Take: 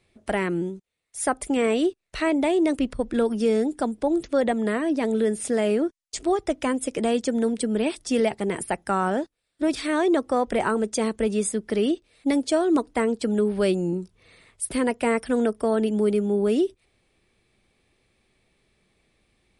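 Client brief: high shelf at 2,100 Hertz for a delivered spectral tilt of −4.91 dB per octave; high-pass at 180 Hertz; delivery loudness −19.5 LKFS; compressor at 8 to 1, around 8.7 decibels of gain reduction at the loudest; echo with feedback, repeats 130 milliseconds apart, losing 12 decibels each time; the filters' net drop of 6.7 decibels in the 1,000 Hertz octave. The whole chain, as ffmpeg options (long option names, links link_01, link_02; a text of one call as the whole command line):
ffmpeg -i in.wav -af "highpass=180,equalizer=frequency=1000:width_type=o:gain=-8,highshelf=frequency=2100:gain=-8.5,acompressor=threshold=-28dB:ratio=8,aecho=1:1:130|260|390:0.251|0.0628|0.0157,volume=13.5dB" out.wav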